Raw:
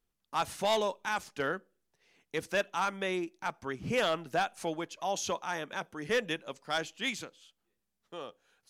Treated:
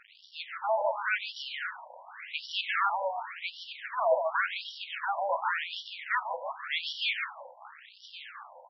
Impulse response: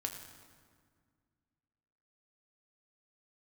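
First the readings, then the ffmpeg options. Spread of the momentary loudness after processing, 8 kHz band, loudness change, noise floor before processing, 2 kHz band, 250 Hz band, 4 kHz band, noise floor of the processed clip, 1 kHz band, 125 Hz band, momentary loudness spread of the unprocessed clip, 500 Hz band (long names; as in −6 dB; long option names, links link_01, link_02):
18 LU, below −15 dB, +2.0 dB, −82 dBFS, +3.5 dB, below −40 dB, +3.0 dB, −56 dBFS, +3.0 dB, below −40 dB, 10 LU, 0.0 dB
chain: -filter_complex "[0:a]aeval=exprs='val(0)+0.5*0.015*sgn(val(0))':channel_layout=same,highpass=290,dynaudnorm=framelen=190:gausssize=9:maxgain=5.5dB,aecho=1:1:146:0.562,aeval=exprs='max(val(0),0)':channel_layout=same,asplit=2[link_01][link_02];[1:a]atrim=start_sample=2205,lowpass=4900[link_03];[link_02][link_03]afir=irnorm=-1:irlink=0,volume=-5dB[link_04];[link_01][link_04]amix=inputs=2:normalize=0,afftfilt=real='re*between(b*sr/1024,710*pow(4100/710,0.5+0.5*sin(2*PI*0.9*pts/sr))/1.41,710*pow(4100/710,0.5+0.5*sin(2*PI*0.9*pts/sr))*1.41)':imag='im*between(b*sr/1024,710*pow(4100/710,0.5+0.5*sin(2*PI*0.9*pts/sr))/1.41,710*pow(4100/710,0.5+0.5*sin(2*PI*0.9*pts/sr))*1.41)':win_size=1024:overlap=0.75,volume=1.5dB"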